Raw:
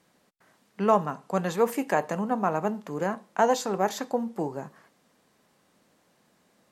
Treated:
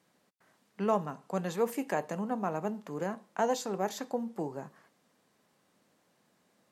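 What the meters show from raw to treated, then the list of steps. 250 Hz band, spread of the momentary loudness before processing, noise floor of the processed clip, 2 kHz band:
-5.0 dB, 8 LU, -72 dBFS, -7.5 dB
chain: high-pass 71 Hz; dynamic bell 1.2 kHz, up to -4 dB, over -34 dBFS, Q 0.79; trim -5 dB

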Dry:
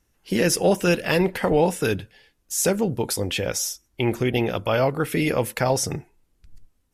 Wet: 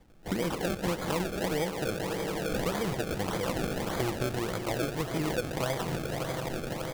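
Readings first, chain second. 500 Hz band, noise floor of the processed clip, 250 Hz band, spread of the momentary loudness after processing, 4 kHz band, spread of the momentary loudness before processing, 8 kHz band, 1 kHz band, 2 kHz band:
-9.0 dB, -39 dBFS, -7.5 dB, 3 LU, -7.5 dB, 7 LU, -13.0 dB, -6.0 dB, -7.5 dB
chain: comb 6.1 ms, depth 37%; echo with a slow build-up 84 ms, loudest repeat 5, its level -17 dB; compression 4:1, threshold -42 dBFS, peak gain reduction 24 dB; on a send: feedback echo behind a high-pass 162 ms, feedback 71%, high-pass 2 kHz, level -3 dB; on the sum: decimation with a swept rate 31×, swing 100% 1.7 Hz; trim +9 dB

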